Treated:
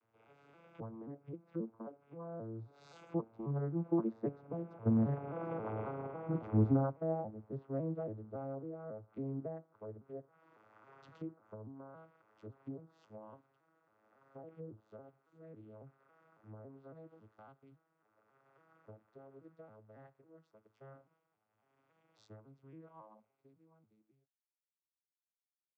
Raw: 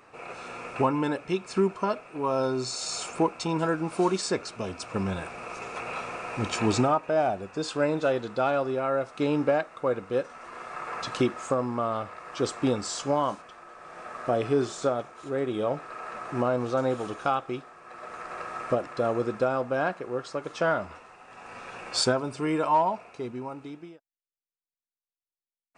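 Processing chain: vocoder on a broken chord major triad, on A2, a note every 271 ms; Doppler pass-by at 5.54 s, 7 m/s, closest 2.4 m; low-pass that closes with the level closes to 870 Hz, closed at -49.5 dBFS; trim +4 dB

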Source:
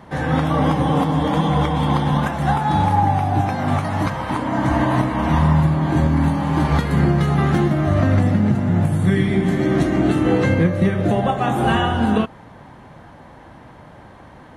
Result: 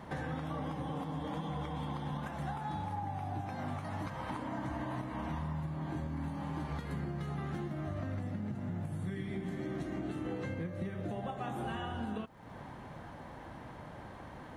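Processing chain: compression 5:1, threshold -32 dBFS, peak gain reduction 18 dB; crackle 580 per s -61 dBFS; trim -5.5 dB

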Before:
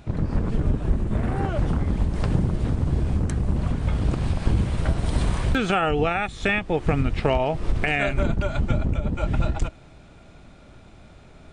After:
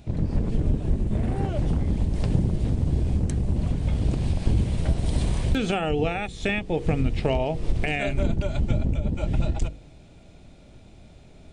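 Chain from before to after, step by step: peaking EQ 1.3 kHz -11 dB 1.2 oct; de-hum 47.33 Hz, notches 11

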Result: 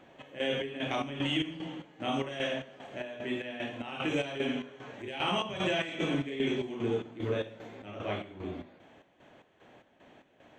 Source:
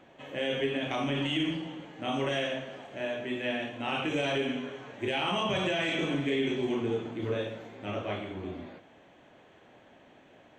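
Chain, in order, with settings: square tremolo 2.5 Hz, depth 65%, duty 55%

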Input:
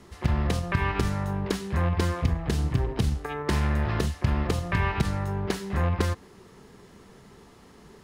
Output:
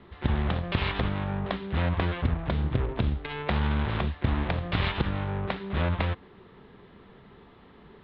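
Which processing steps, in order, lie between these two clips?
self-modulated delay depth 0.97 ms; elliptic low-pass 3.7 kHz, stop band 50 dB

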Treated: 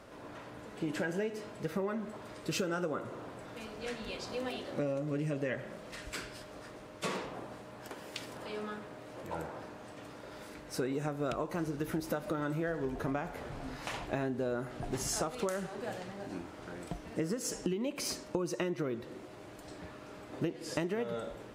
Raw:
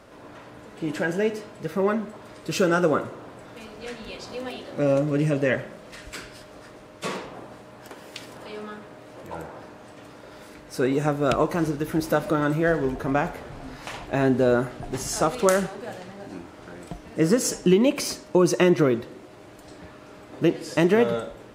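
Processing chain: compression 16:1, threshold -27 dBFS, peak gain reduction 15 dB; trim -3.5 dB

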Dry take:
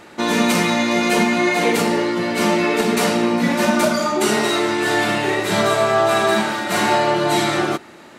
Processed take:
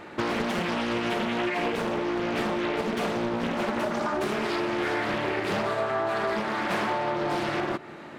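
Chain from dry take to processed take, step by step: tone controls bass +1 dB, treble -12 dB; hum notches 60/120/180/240 Hz; compression 10:1, threshold -24 dBFS, peak gain reduction 12 dB; on a send at -22 dB: reverberation RT60 3.6 s, pre-delay 3 ms; on the sum: loudspeaker Doppler distortion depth 0.8 ms

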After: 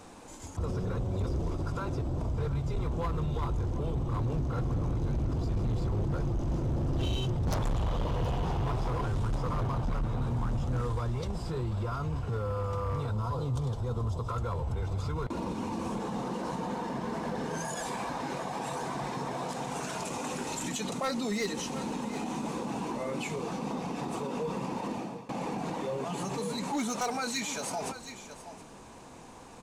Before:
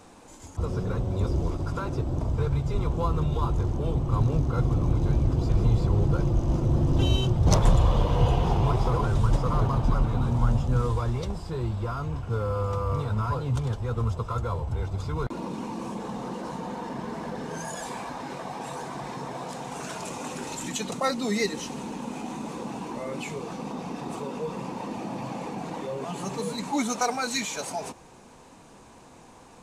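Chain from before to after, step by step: hard clipper -21 dBFS, distortion -11 dB; 13.11–14.29 s: high-order bell 1.9 kHz -8 dB 1.3 oct; 24.87–25.29 s: fade out; delay 721 ms -17 dB; peak limiter -26.5 dBFS, peak gain reduction 7.5 dB; trim +1 dB

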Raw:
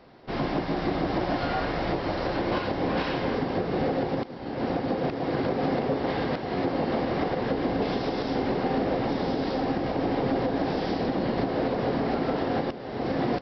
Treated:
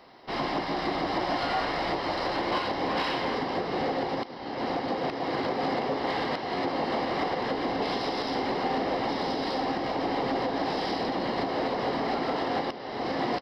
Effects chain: tone controls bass -13 dB, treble +5 dB; comb 1 ms, depth 31%; in parallel at -11.5 dB: hard clipper -33 dBFS, distortion -7 dB

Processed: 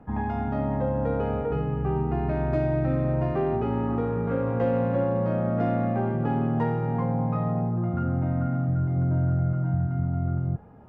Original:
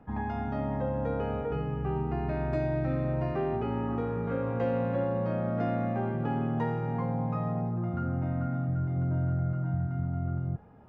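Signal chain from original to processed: tracing distortion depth 0.034 ms; treble shelf 2.4 kHz -8 dB; trim +5 dB

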